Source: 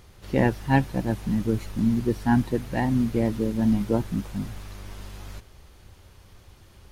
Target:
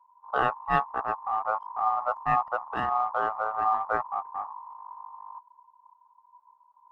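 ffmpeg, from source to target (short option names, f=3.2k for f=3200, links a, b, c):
-af "anlmdn=10,tiltshelf=f=1.5k:g=4,aeval=exprs='val(0)*sin(2*PI*980*n/s)':c=same,volume=-5dB"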